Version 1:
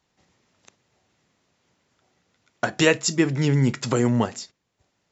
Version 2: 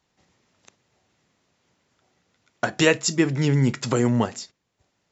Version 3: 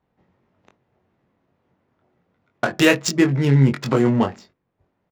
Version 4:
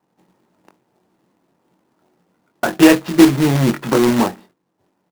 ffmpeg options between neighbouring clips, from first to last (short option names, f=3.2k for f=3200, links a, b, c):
-af anull
-filter_complex "[0:a]adynamicsmooth=sensitivity=2.5:basefreq=1.5k,asplit=2[a][b];[b]adelay=22,volume=-5dB[c];[a][c]amix=inputs=2:normalize=0,volume=2.5dB"
-af "aeval=exprs='clip(val(0),-1,0.211)':c=same,highpass=170,equalizer=f=180:t=q:w=4:g=5,equalizer=f=320:t=q:w=4:g=7,equalizer=f=890:t=q:w=4:g=5,equalizer=f=2.2k:t=q:w=4:g=-5,lowpass=f=2.9k:w=0.5412,lowpass=f=2.9k:w=1.3066,acrusher=bits=2:mode=log:mix=0:aa=0.000001,volume=2.5dB"